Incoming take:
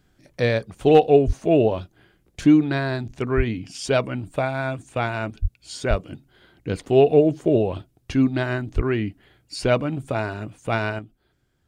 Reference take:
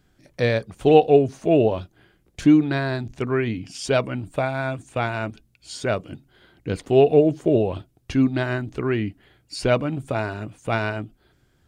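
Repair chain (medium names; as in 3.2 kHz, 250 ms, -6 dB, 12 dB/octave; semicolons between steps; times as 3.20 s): clip repair -4.5 dBFS; de-plosive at 1.26/3.36/5.41/5.89/8.75 s; gain correction +7 dB, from 10.99 s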